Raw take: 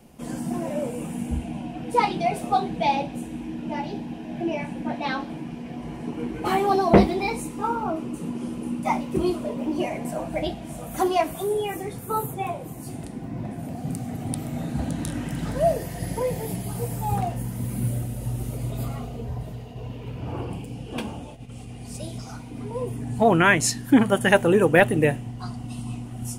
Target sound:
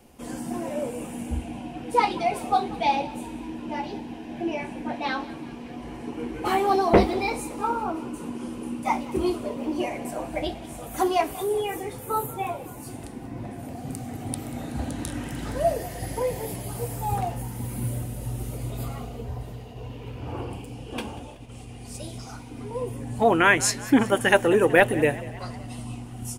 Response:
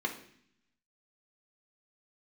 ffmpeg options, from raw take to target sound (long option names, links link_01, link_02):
-filter_complex "[0:a]equalizer=frequency=170:width=2.2:gain=-10.5,bandreject=frequency=640:width=16,asplit=2[link_01][link_02];[link_02]asplit=5[link_03][link_04][link_05][link_06][link_07];[link_03]adelay=188,afreqshift=44,volume=-19dB[link_08];[link_04]adelay=376,afreqshift=88,volume=-23.6dB[link_09];[link_05]adelay=564,afreqshift=132,volume=-28.2dB[link_10];[link_06]adelay=752,afreqshift=176,volume=-32.7dB[link_11];[link_07]adelay=940,afreqshift=220,volume=-37.3dB[link_12];[link_08][link_09][link_10][link_11][link_12]amix=inputs=5:normalize=0[link_13];[link_01][link_13]amix=inputs=2:normalize=0"